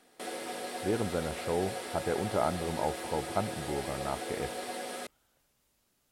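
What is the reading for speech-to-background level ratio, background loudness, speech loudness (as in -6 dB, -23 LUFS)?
3.5 dB, -38.5 LUFS, -35.0 LUFS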